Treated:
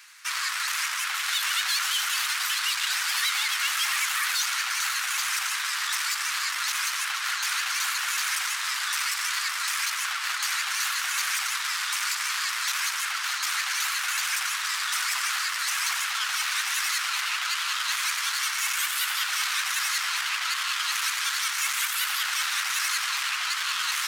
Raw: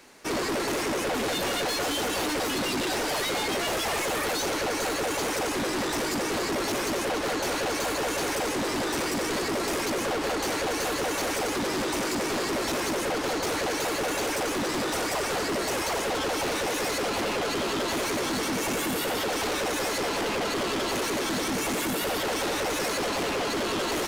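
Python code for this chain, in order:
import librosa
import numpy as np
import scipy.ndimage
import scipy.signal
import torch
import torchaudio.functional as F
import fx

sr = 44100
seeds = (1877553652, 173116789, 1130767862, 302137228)

y = fx.vibrato(x, sr, rate_hz=12.0, depth_cents=82.0)
y = scipy.signal.sosfilt(scipy.signal.butter(6, 1200.0, 'highpass', fs=sr, output='sos'), y)
y = F.gain(torch.from_numpy(y), 5.0).numpy()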